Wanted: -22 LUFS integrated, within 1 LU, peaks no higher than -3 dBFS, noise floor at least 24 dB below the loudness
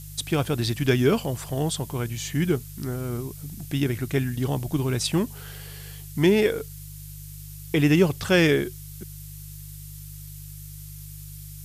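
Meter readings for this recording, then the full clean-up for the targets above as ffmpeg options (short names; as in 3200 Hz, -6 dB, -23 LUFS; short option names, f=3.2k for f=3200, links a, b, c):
hum 50 Hz; harmonics up to 150 Hz; hum level -38 dBFS; noise floor -40 dBFS; noise floor target -49 dBFS; loudness -24.5 LUFS; peak -7.0 dBFS; loudness target -22.0 LUFS
-> -af "bandreject=f=50:t=h:w=4,bandreject=f=100:t=h:w=4,bandreject=f=150:t=h:w=4"
-af "afftdn=nr=9:nf=-40"
-af "volume=2.5dB"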